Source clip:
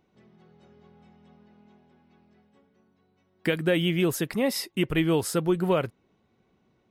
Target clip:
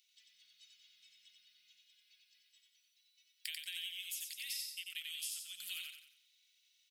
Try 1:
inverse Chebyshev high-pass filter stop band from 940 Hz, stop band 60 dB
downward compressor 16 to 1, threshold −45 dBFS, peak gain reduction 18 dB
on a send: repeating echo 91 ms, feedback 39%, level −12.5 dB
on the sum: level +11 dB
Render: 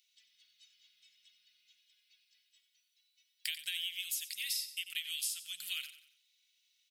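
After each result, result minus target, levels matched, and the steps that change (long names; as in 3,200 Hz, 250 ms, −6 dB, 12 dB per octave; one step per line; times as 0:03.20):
downward compressor: peak gain reduction −6.5 dB; echo-to-direct −9 dB
change: downward compressor 16 to 1, threshold −52 dBFS, peak gain reduction 24.5 dB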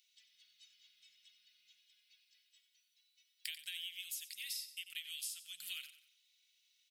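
echo-to-direct −9 dB
change: repeating echo 91 ms, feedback 39%, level −3.5 dB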